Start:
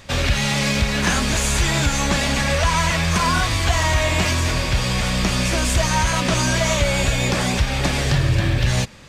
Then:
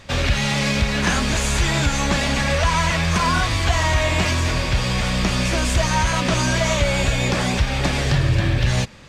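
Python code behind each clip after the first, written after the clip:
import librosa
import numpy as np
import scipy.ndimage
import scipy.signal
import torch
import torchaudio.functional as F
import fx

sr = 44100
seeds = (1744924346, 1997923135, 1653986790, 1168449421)

y = fx.high_shelf(x, sr, hz=9300.0, db=-9.0)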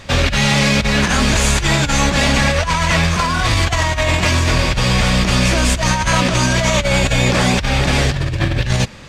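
y = fx.over_compress(x, sr, threshold_db=-20.0, ratio=-0.5)
y = y * 10.0 ** (5.5 / 20.0)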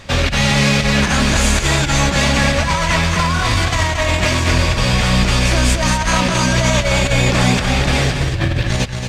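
y = x + 10.0 ** (-6.5 / 20.0) * np.pad(x, (int(227 * sr / 1000.0), 0))[:len(x)]
y = y * 10.0 ** (-1.0 / 20.0)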